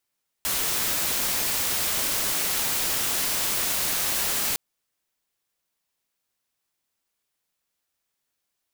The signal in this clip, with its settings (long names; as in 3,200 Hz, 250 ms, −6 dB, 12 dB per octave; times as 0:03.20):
noise white, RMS −25.5 dBFS 4.11 s